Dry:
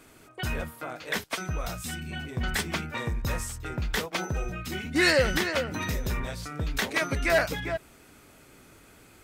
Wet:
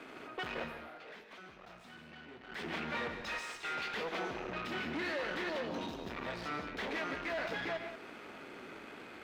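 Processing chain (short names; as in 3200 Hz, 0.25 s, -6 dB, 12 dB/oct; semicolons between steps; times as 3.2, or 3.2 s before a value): 3.22–3.94 weighting filter ITU-R 468; compressor, threshold -32 dBFS, peak gain reduction 13.5 dB; 5.49–6.06 elliptic band-stop 910–3000 Hz; tube stage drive 46 dB, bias 0.8; three-band isolator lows -20 dB, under 200 Hz, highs -24 dB, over 3900 Hz; 0.62–2.64 dip -13 dB, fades 0.17 s; non-linear reverb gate 0.2 s rising, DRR 6 dB; gain +11 dB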